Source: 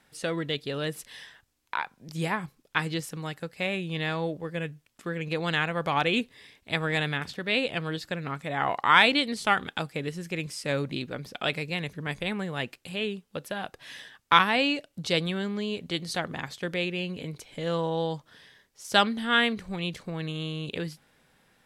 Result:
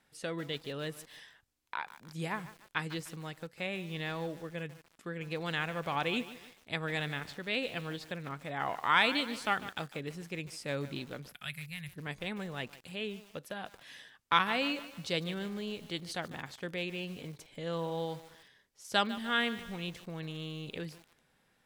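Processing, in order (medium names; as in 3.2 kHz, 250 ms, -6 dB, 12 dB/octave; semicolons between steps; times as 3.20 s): 11.29–11.96 s: FFT filter 150 Hz 0 dB, 380 Hz -27 dB, 1.8 kHz -2 dB, 6.4 kHz -7 dB, 11 kHz +14 dB; bit-crushed delay 149 ms, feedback 55%, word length 6-bit, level -14 dB; trim -7.5 dB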